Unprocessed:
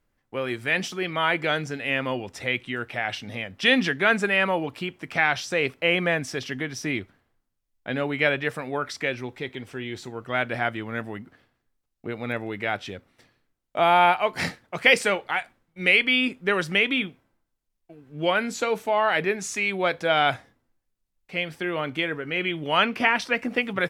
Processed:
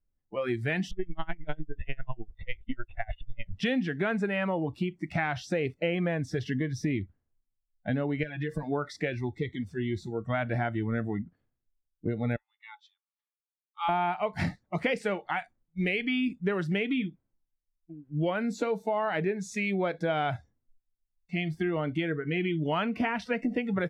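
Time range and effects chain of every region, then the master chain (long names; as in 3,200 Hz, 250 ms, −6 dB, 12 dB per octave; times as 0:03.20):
0:00.91–0:03.53: linear-prediction vocoder at 8 kHz pitch kept + tremolo with a sine in dB 10 Hz, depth 29 dB
0:08.23–0:08.63: downward expander −38 dBFS + comb filter 6.1 ms, depth 74% + downward compressor, threshold −30 dBFS
0:12.36–0:13.89: Chebyshev high-pass with heavy ripple 820 Hz, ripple 9 dB + expander for the loud parts, over −43 dBFS
whole clip: noise reduction from a noise print of the clip's start 21 dB; spectral tilt −3.5 dB per octave; downward compressor 5 to 1, threshold −26 dBFS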